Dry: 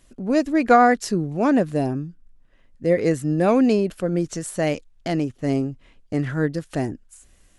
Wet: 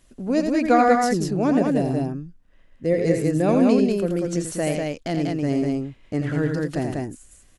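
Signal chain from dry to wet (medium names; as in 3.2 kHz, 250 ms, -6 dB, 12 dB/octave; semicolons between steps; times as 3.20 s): loudspeakers at several distances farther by 29 m -6 dB, 66 m -3 dB; dynamic bell 1.3 kHz, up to -5 dB, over -29 dBFS, Q 0.87; trim -1.5 dB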